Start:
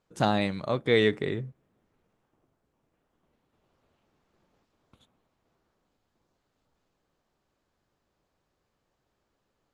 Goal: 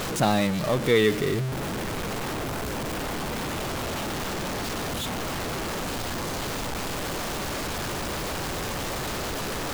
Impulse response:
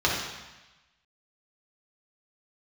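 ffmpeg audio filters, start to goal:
-filter_complex "[0:a]aeval=exprs='val(0)+0.5*0.0631*sgn(val(0))':channel_layout=same,asettb=1/sr,asplit=3[link_01][link_02][link_03];[link_01]atrim=end=0.984[link_04];[link_02]atrim=start=0.98:end=1.48,asetpts=PTS-STARTPTS,afade=type=in:duration=0.004:curve=qsin,afade=type=out:start_time=0.496:duration=0.004:curve=qsin,equalizer=frequency=900:width_type=o:width=0.37:gain=-7[link_05];[link_03]atrim=start=1.476[link_06];[link_04][link_05]acrossfade=duration=0.004:curve1=hsin:curve2=qsin[link_07];[link_07][link_06]acrossfade=duration=0.004:curve1=qsin:curve2=hsin"

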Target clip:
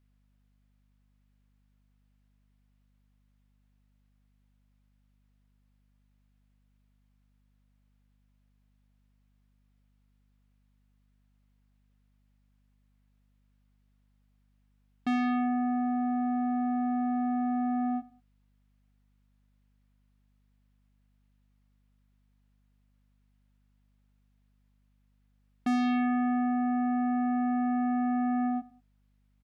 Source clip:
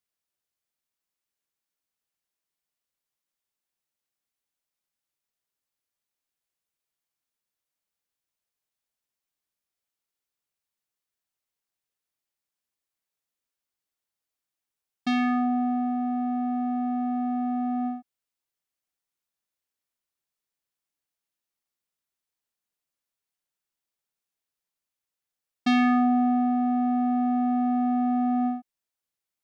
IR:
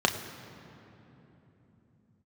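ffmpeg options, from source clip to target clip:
-filter_complex "[0:a]aeval=exprs='0.178*sin(PI/2*1.78*val(0)/0.178)':channel_layout=same,alimiter=level_in=0.5dB:limit=-24dB:level=0:latency=1,volume=-0.5dB,aeval=exprs='val(0)+0.000501*(sin(2*PI*50*n/s)+sin(2*PI*2*50*n/s)/2+sin(2*PI*3*50*n/s)/3+sin(2*PI*4*50*n/s)/4+sin(2*PI*5*50*n/s)/5)':channel_layout=same,bass=frequency=250:gain=-1,treble=frequency=4000:gain=-13,asplit=2[link_01][link_02];[link_02]adelay=95,lowpass=frequency=2000:poles=1,volume=-19dB,asplit=2[link_03][link_04];[link_04]adelay=95,lowpass=frequency=2000:poles=1,volume=0.29[link_05];[link_01][link_03][link_05]amix=inputs=3:normalize=0"

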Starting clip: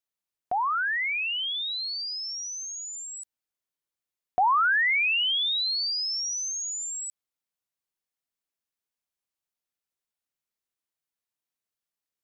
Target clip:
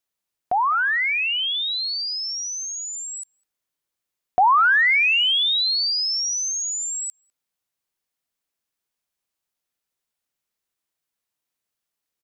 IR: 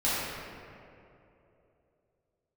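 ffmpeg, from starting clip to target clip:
-filter_complex "[0:a]asplit=2[link_01][link_02];[link_02]adelay=200,highpass=300,lowpass=3400,asoftclip=type=hard:threshold=-26.5dB,volume=-22dB[link_03];[link_01][link_03]amix=inputs=2:normalize=0,volume=6dB"

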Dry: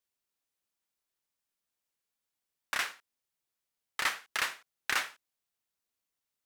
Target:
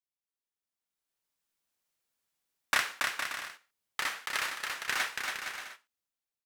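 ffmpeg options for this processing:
ffmpeg -i in.wav -filter_complex "[0:a]dynaudnorm=framelen=310:gausssize=7:maxgain=16dB,asoftclip=type=tanh:threshold=-9dB,asettb=1/sr,asplit=3[link_01][link_02][link_03];[link_01]atrim=end=2.794[link_04];[link_02]atrim=start=2.79:end=5,asetpts=PTS-STARTPTS,afade=type=in:duration=0.004:curve=qsin,afade=type=out:start_time=2.206:duration=0.004:curve=qsin,acompressor=threshold=-25dB:ratio=4[link_05];[link_03]atrim=start=4.996[link_06];[link_04][link_05]acrossfade=duration=0.004:curve1=hsin:curve2=qsin[link_07];[link_07][link_06]acrossfade=duration=0.004:curve1=qsin:curve2=hsin,aecho=1:1:280|462|580.3|657.2|707.2:0.631|0.398|0.251|0.158|0.1,agate=range=-7dB:threshold=-42dB:ratio=16:detection=peak,volume=-6dB" out.wav

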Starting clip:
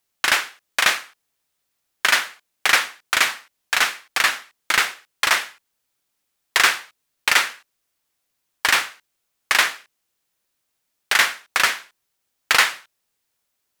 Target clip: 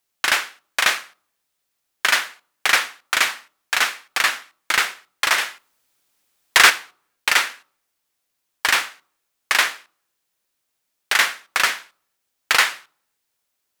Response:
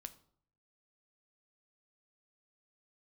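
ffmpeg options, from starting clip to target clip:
-filter_complex "[0:a]asettb=1/sr,asplit=3[link_01][link_02][link_03];[link_01]atrim=end=5.384[link_04];[link_02]atrim=start=5.38:end=6.7,asetpts=PTS-STARTPTS,afade=type=in:duration=0.004:curve=qsin,afade=type=out:start_time=1.316:duration=0.004:curve=qsin,acontrast=90[link_05];[link_03]atrim=start=6.696[link_06];[link_04][link_05]acrossfade=duration=0.004:curve1=hsin:curve2=qsin[link_07];[link_07][link_06]acrossfade=duration=0.004:curve1=qsin:curve2=hsin,asplit=2[link_08][link_09];[link_09]highpass=180[link_10];[1:a]atrim=start_sample=2205[link_11];[link_10][link_11]afir=irnorm=-1:irlink=0,volume=-3.5dB[link_12];[link_08][link_12]amix=inputs=2:normalize=0,volume=-3dB"

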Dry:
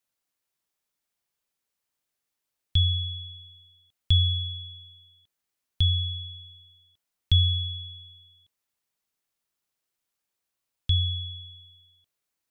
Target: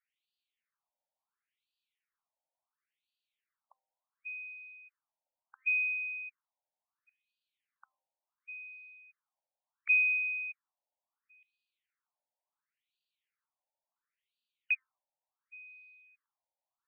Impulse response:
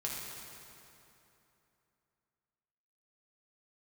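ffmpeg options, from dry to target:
-filter_complex "[0:a]bandreject=frequency=350.8:width_type=h:width=4,bandreject=frequency=701.6:width_type=h:width=4,bandreject=frequency=1052.4:width_type=h:width=4,bandreject=frequency=1403.2:width_type=h:width=4,bandreject=frequency=1754:width_type=h:width=4,bandreject=frequency=2104.8:width_type=h:width=4,bandreject=frequency=2455.6:width_type=h:width=4,bandreject=frequency=2806.4:width_type=h:width=4,bandreject=frequency=3157.2:width_type=h:width=4,bandreject=frequency=3508:width_type=h:width=4,bandreject=frequency=3858.8:width_type=h:width=4,bandreject=frequency=4209.6:width_type=h:width=4,bandreject=frequency=4560.4:width_type=h:width=4,bandreject=frequency=4911.2:width_type=h:width=4,bandreject=frequency=5262:width_type=h:width=4,bandreject=frequency=5612.8:width_type=h:width=4,bandreject=frequency=5963.6:width_type=h:width=4,bandreject=frequency=6314.4:width_type=h:width=4,bandreject=frequency=6665.2:width_type=h:width=4,bandreject=frequency=7016:width_type=h:width=4,bandreject=frequency=7366.8:width_type=h:width=4,bandreject=frequency=7717.6:width_type=h:width=4,bandreject=frequency=8068.4:width_type=h:width=4,bandreject=frequency=8419.2:width_type=h:width=4,bandreject=frequency=8770:width_type=h:width=4,bandreject=frequency=9120.8:width_type=h:width=4,bandreject=frequency=9471.6:width_type=h:width=4,bandreject=frequency=9822.4:width_type=h:width=4,bandreject=frequency=10173.2:width_type=h:width=4,bandreject=frequency=10524:width_type=h:width=4,bandreject=frequency=10874.8:width_type=h:width=4,bandreject=frequency=11225.6:width_type=h:width=4,bandreject=frequency=11576.4:width_type=h:width=4,bandreject=frequency=11927.2:width_type=h:width=4,bandreject=frequency=12278:width_type=h:width=4,bandreject=frequency=12628.8:width_type=h:width=4,bandreject=frequency=12979.6:width_type=h:width=4,bandreject=frequency=13330.4:width_type=h:width=4,asetrate=32667,aresample=44100,asplit=2[link_01][link_02];[1:a]atrim=start_sample=2205,afade=type=out:start_time=0.39:duration=0.01,atrim=end_sample=17640[link_03];[link_02][link_03]afir=irnorm=-1:irlink=0,volume=-24dB[link_04];[link_01][link_04]amix=inputs=2:normalize=0,afftfilt=real='re*between(b*sr/1024,670*pow(3500/670,0.5+0.5*sin(2*PI*0.71*pts/sr))/1.41,670*pow(3500/670,0.5+0.5*sin(2*PI*0.71*pts/sr))*1.41)':imag='im*between(b*sr/1024,670*pow(3500/670,0.5+0.5*sin(2*PI*0.71*pts/sr))/1.41,670*pow(3500/670,0.5+0.5*sin(2*PI*0.71*pts/sr))*1.41)':win_size=1024:overlap=0.75"

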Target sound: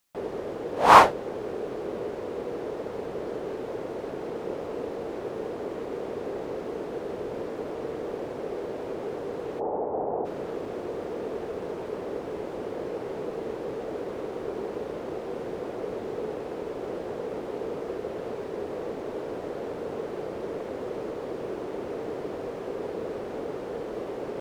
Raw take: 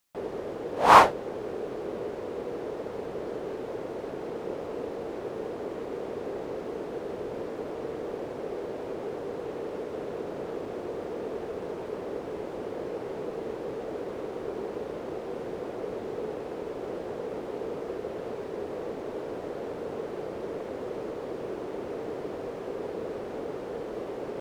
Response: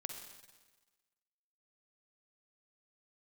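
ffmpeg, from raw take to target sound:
-filter_complex "[0:a]asplit=3[link_01][link_02][link_03];[link_01]afade=type=out:start_time=9.59:duration=0.02[link_04];[link_02]lowpass=frequency=810:width_type=q:width=5.5,afade=type=in:start_time=9.59:duration=0.02,afade=type=out:start_time=10.24:duration=0.02[link_05];[link_03]afade=type=in:start_time=10.24:duration=0.02[link_06];[link_04][link_05][link_06]amix=inputs=3:normalize=0,volume=1.5dB"

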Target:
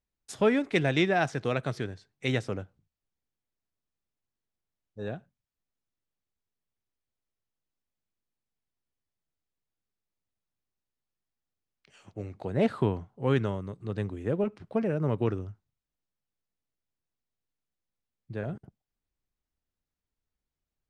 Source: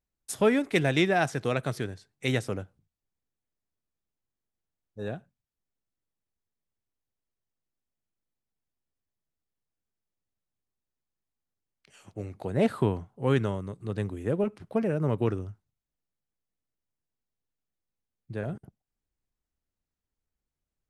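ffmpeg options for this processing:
ffmpeg -i in.wav -af "lowpass=6200,volume=-1dB" out.wav

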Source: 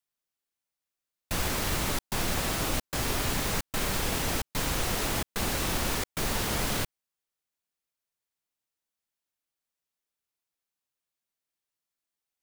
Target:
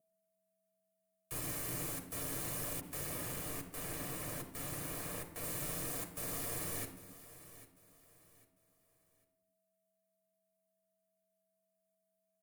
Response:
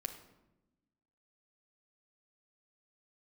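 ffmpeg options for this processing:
-filter_complex "[0:a]firequalizer=gain_entry='entry(2000,0);entry(3800,-6);entry(9100,11)':delay=0.05:min_phase=1,asoftclip=type=tanh:threshold=-27dB,afreqshift=28,aeval=exprs='val(0)+0.000562*sin(2*PI*420*n/s)':channel_layout=same,aeval=exprs='val(0)*sin(2*PI*230*n/s)':channel_layout=same,aecho=1:1:798|1596|2394:0.158|0.0523|0.0173[link_01];[1:a]atrim=start_sample=2205,afade=type=out:start_time=0.39:duration=0.01,atrim=end_sample=17640,asetrate=42777,aresample=44100[link_02];[link_01][link_02]afir=irnorm=-1:irlink=0,asettb=1/sr,asplit=3[link_03][link_04][link_05];[link_03]atrim=end=2.814[link_06];[link_04]atrim=start=2.81:end=5.44,asetpts=PTS-STARTPTS,afade=type=in:duration=0.004:curve=qsin,afade=type=out:start_time=2.626:duration=0.004:curve=qsin,adynamicequalizer=threshold=0.00282:dfrequency=3700:dqfactor=0.7:tfrequency=3700:tqfactor=0.7:attack=5:release=100:ratio=0.375:range=2:mode=cutabove:tftype=highshelf[link_07];[link_05]atrim=start=5.436[link_08];[link_06][link_07]acrossfade=duration=0.004:curve1=hsin:curve2=qsin[link_09];[link_09][link_08]acrossfade=duration=0.004:curve1=qsin:curve2=hsin,volume=-5.5dB"

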